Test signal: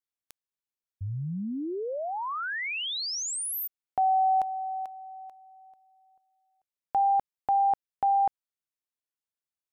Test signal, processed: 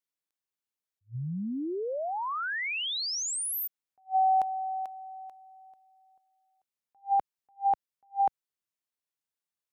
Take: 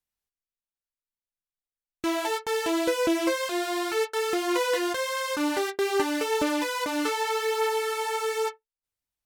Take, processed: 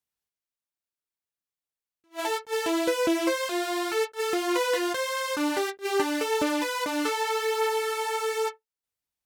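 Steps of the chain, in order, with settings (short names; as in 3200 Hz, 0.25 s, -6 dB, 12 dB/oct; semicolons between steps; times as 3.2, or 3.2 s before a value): HPF 82 Hz 6 dB/oct; attack slew limiter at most 370 dB/s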